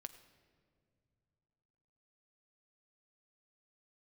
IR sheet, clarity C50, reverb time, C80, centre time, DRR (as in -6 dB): 12.5 dB, no single decay rate, 13.0 dB, 10 ms, 10.0 dB